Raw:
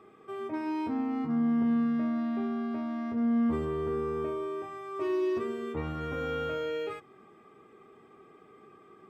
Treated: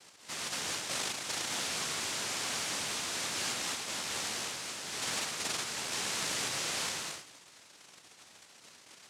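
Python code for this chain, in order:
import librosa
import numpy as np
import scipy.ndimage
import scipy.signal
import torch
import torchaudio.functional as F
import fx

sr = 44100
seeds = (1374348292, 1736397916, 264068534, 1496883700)

y = np.minimum(x, 2.0 * 10.0 ** (-31.5 / 20.0) - x)
y = fx.echo_feedback(y, sr, ms=223, feedback_pct=15, wet_db=-3.5)
y = fx.rider(y, sr, range_db=4, speed_s=0.5)
y = fx.noise_vocoder(y, sr, seeds[0], bands=1)
y = fx.env_flatten(y, sr, amount_pct=70, at=(5.91, 6.47), fade=0.02)
y = F.gain(torch.from_numpy(y), -5.5).numpy()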